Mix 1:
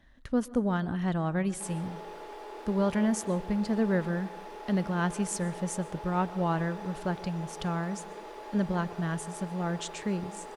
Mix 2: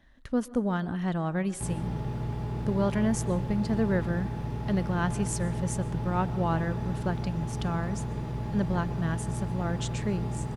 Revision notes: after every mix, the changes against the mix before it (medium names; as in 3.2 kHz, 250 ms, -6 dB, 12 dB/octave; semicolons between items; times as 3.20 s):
background: remove steep high-pass 370 Hz 36 dB/octave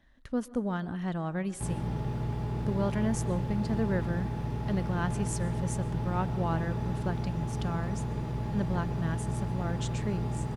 speech -3.5 dB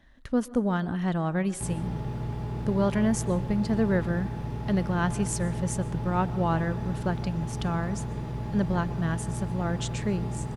speech +5.5 dB